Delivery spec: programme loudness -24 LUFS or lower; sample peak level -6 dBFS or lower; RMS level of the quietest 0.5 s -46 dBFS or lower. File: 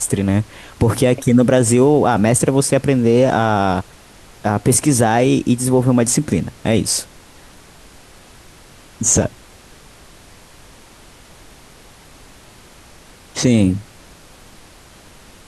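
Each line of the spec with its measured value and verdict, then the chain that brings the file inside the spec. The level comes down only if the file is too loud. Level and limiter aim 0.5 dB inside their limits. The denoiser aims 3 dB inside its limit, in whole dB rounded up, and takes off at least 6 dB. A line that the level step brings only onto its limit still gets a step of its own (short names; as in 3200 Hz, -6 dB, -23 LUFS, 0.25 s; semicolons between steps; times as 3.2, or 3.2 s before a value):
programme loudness -15.5 LUFS: fail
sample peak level -3.0 dBFS: fail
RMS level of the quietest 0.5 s -44 dBFS: fail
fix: gain -9 dB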